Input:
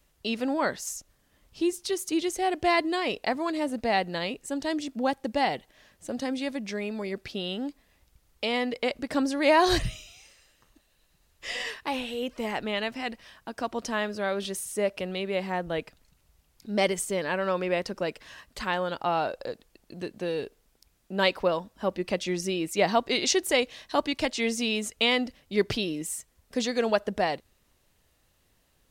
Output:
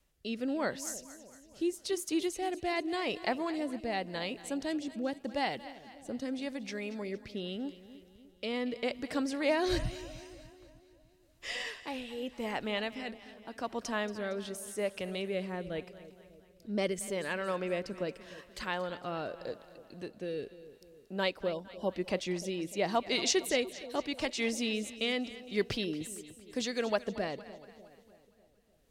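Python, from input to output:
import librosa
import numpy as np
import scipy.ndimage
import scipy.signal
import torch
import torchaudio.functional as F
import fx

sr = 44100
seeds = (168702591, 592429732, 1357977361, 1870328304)

y = fx.rotary(x, sr, hz=0.85)
y = fx.spec_box(y, sr, start_s=21.53, length_s=0.37, low_hz=1100.0, high_hz=2800.0, gain_db=-18)
y = fx.echo_split(y, sr, split_hz=670.0, low_ms=299, high_ms=230, feedback_pct=52, wet_db=-15.0)
y = y * librosa.db_to_amplitude(-4.0)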